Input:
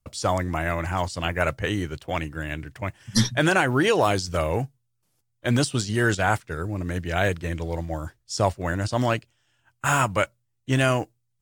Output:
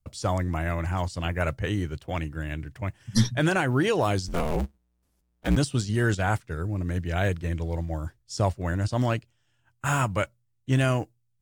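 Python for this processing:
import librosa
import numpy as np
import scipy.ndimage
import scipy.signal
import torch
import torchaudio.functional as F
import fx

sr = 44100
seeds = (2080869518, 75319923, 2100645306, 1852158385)

y = fx.cycle_switch(x, sr, every=2, mode='inverted', at=(4.27, 5.55), fade=0.02)
y = fx.low_shelf(y, sr, hz=250.0, db=8.0)
y = y * librosa.db_to_amplitude(-5.5)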